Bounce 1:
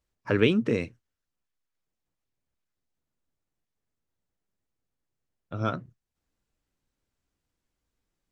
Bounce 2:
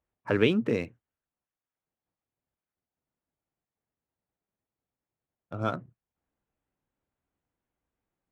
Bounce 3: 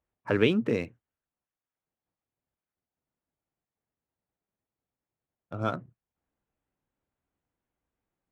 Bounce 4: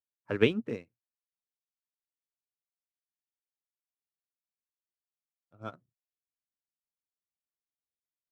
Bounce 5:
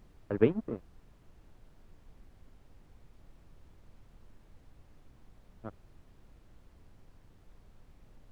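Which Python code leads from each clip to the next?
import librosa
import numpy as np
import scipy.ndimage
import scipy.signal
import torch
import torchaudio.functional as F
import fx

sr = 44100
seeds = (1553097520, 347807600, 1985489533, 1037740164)

y1 = fx.wiener(x, sr, points=9)
y1 = fx.highpass(y1, sr, hz=80.0, slope=6)
y1 = fx.peak_eq(y1, sr, hz=770.0, db=4.0, octaves=0.77)
y1 = F.gain(torch.from_numpy(y1), -1.5).numpy()
y2 = y1
y3 = fx.upward_expand(y2, sr, threshold_db=-37.0, expansion=2.5)
y3 = F.gain(torch.from_numpy(y3), 1.5).numpy()
y4 = fx.backlash(y3, sr, play_db=-31.5)
y4 = scipy.signal.sosfilt(scipy.signal.butter(2, 1200.0, 'lowpass', fs=sr, output='sos'), y4)
y4 = fx.dmg_noise_colour(y4, sr, seeds[0], colour='brown', level_db=-55.0)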